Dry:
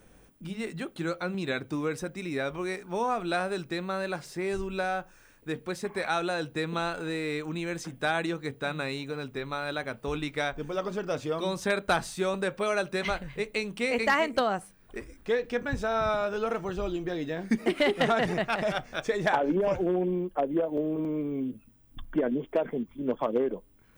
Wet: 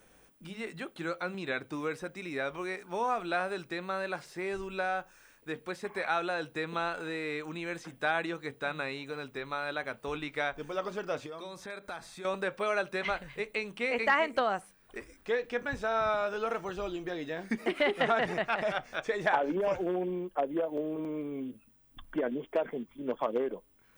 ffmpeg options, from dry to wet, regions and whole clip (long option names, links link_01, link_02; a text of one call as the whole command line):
ffmpeg -i in.wav -filter_complex "[0:a]asettb=1/sr,asplit=3[link_01][link_02][link_03];[link_01]atrim=end=11.264[link_04];[link_02]atrim=start=11.26:end=12.25,asetpts=PTS-STARTPTS,afade=type=in:duration=0.004:curve=qsin,afade=type=out:start_time=0.986:duration=0.004:curve=qsin,acompressor=threshold=-37dB:ratio=4:attack=3.2:release=140:knee=1:detection=peak,asuperstop=centerf=2900:order=4:qfactor=8[link_05];[link_03]atrim=start=12.246[link_06];[link_04][link_05]acrossfade=duration=0.004:curve1=hsin:curve2=qsin[link_07];[link_07][link_06]acrossfade=duration=0.004:curve1=qsin:curve2=hsin,acrossover=split=3300[link_08][link_09];[link_09]acompressor=threshold=-52dB:ratio=4:attack=1:release=60[link_10];[link_08][link_10]amix=inputs=2:normalize=0,lowshelf=frequency=340:gain=-10.5" out.wav